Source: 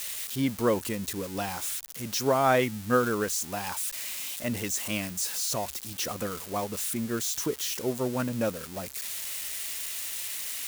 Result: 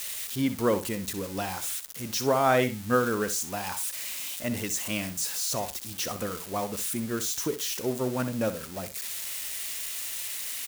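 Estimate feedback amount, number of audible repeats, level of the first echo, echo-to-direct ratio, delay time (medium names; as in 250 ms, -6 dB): 19%, 2, -12.0 dB, -12.0 dB, 63 ms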